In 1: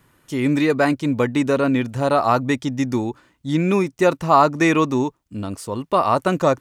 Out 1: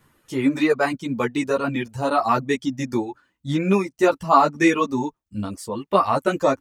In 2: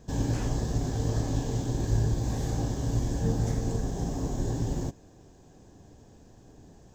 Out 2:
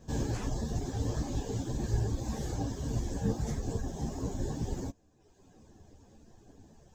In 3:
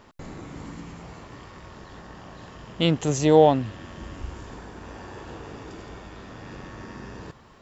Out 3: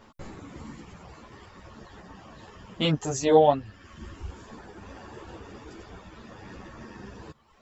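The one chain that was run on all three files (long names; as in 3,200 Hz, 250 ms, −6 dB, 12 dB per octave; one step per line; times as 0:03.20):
reverb reduction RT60 1.1 s
string-ensemble chorus
level +2 dB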